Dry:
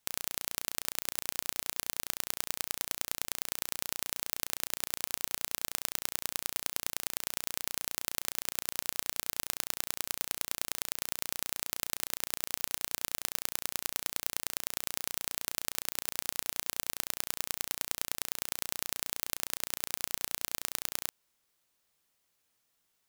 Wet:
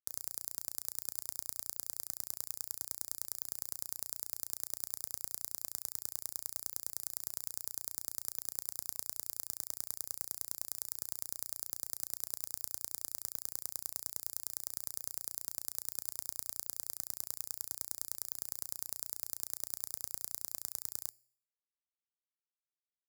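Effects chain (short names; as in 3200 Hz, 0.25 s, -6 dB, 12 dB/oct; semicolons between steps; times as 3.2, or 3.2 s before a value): band shelf 2000 Hz -9.5 dB 2.3 oct; fixed phaser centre 520 Hz, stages 8; crossover distortion -44.5 dBFS; HPF 61 Hz 24 dB/oct; resonator 120 Hz, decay 0.6 s, harmonics odd, mix 40%; gain +1 dB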